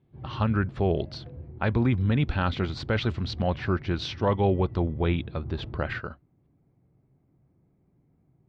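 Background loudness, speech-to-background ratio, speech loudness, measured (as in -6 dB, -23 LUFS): -41.5 LUFS, 14.0 dB, -27.5 LUFS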